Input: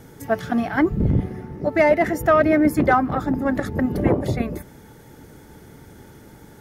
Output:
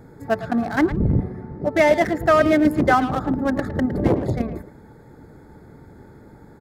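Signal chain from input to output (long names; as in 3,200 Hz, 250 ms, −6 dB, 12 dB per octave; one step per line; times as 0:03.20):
adaptive Wiener filter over 15 samples
high-shelf EQ 3,500 Hz +8.5 dB
far-end echo of a speakerphone 110 ms, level −11 dB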